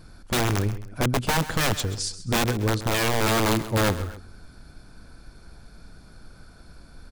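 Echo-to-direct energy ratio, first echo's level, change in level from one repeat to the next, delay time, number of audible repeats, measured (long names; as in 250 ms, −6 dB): −14.0 dB, −14.5 dB, −7.5 dB, 132 ms, 2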